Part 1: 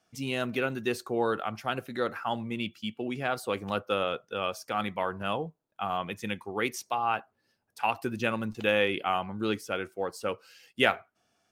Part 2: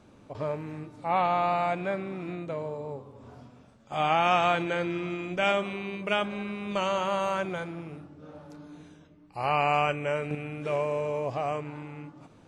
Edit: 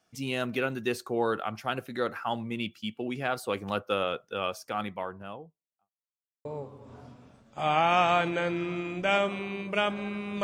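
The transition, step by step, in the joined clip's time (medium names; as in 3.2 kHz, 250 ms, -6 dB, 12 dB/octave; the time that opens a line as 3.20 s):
part 1
4.42–5.91 s: studio fade out
5.91–6.45 s: mute
6.45 s: go over to part 2 from 2.79 s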